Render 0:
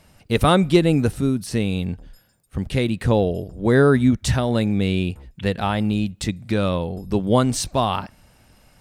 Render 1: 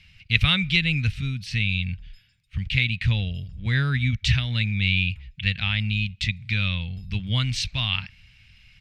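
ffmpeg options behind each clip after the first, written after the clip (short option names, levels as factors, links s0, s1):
-af "firequalizer=gain_entry='entry(110,0);entry(340,-28);entry(720,-24);entry(2300,10);entry(9100,-20)':delay=0.05:min_phase=1,volume=1.12"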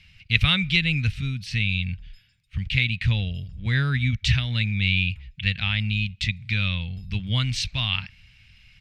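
-af anull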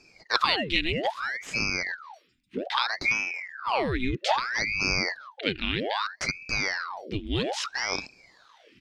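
-af "aeval=exprs='val(0)*sin(2*PI*1300*n/s+1300*0.9/0.62*sin(2*PI*0.62*n/s))':c=same,volume=0.841"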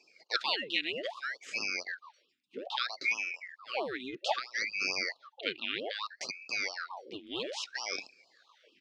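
-af "highpass=420,lowpass=6900,afftfilt=real='re*(1-between(b*sr/1024,770*pow(1900/770,0.5+0.5*sin(2*PI*4.5*pts/sr))/1.41,770*pow(1900/770,0.5+0.5*sin(2*PI*4.5*pts/sr))*1.41))':imag='im*(1-between(b*sr/1024,770*pow(1900/770,0.5+0.5*sin(2*PI*4.5*pts/sr))/1.41,770*pow(1900/770,0.5+0.5*sin(2*PI*4.5*pts/sr))*1.41))':win_size=1024:overlap=0.75,volume=0.562"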